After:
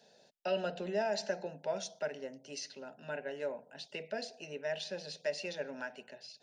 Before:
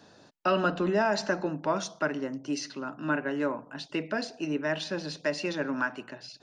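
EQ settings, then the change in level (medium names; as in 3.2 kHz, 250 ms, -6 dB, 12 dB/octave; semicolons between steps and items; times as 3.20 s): tone controls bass -11 dB, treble -1 dB; static phaser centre 310 Hz, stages 6; -4.0 dB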